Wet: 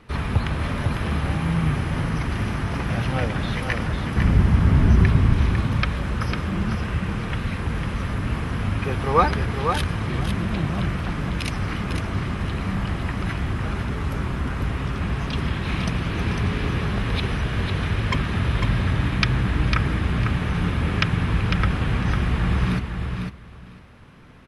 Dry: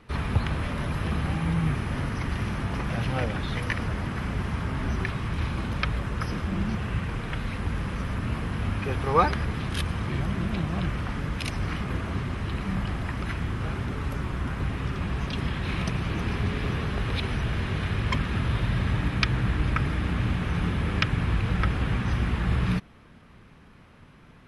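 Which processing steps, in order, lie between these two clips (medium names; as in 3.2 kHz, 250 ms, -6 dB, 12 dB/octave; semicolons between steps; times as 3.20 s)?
4.16–5.33 s: bass shelf 310 Hz +11 dB; feedback delay 501 ms, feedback 16%, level -6 dB; trim +3 dB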